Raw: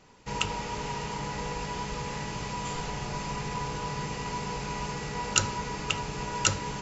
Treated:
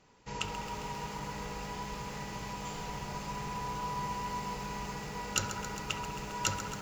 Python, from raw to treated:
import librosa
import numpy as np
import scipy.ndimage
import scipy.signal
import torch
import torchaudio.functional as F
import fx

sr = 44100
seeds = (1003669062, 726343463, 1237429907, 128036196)

p1 = x + fx.echo_wet_bandpass(x, sr, ms=67, feedback_pct=66, hz=980.0, wet_db=-8.5, dry=0)
p2 = fx.tube_stage(p1, sr, drive_db=8.0, bias=0.45)
p3 = fx.echo_crushed(p2, sr, ms=134, feedback_pct=80, bits=7, wet_db=-11.0)
y = p3 * 10.0 ** (-5.0 / 20.0)